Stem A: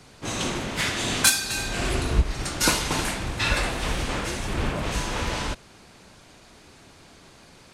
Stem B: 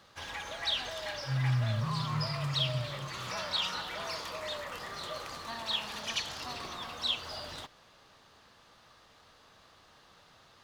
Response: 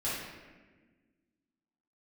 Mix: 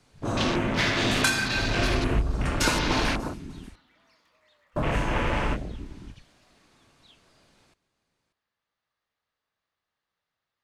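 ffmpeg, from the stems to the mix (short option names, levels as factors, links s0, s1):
-filter_complex "[0:a]volume=1.26,asplit=3[s0][s1][s2];[s0]atrim=end=3.17,asetpts=PTS-STARTPTS,afade=t=out:st=3.166:d=0.004:c=hsin[s3];[s1]atrim=start=3.17:end=4.76,asetpts=PTS-STARTPTS,volume=0[s4];[s2]atrim=start=4.76,asetpts=PTS-STARTPTS,afade=t=in:d=0.004:c=hsin[s5];[s3][s4][s5]concat=n=3:v=0:a=1,asplit=3[s6][s7][s8];[s7]volume=0.335[s9];[s8]volume=0.2[s10];[1:a]equalizer=f=2000:t=o:w=0.77:g=6.5,volume=0.266[s11];[2:a]atrim=start_sample=2205[s12];[s9][s12]afir=irnorm=-1:irlink=0[s13];[s10]aecho=0:1:587:1[s14];[s6][s11][s13][s14]amix=inputs=4:normalize=0,afwtdn=0.0355,acrossover=split=2900|7200[s15][s16][s17];[s15]acompressor=threshold=0.0891:ratio=4[s18];[s16]acompressor=threshold=0.0251:ratio=4[s19];[s17]acompressor=threshold=0.01:ratio=4[s20];[s18][s19][s20]amix=inputs=3:normalize=0"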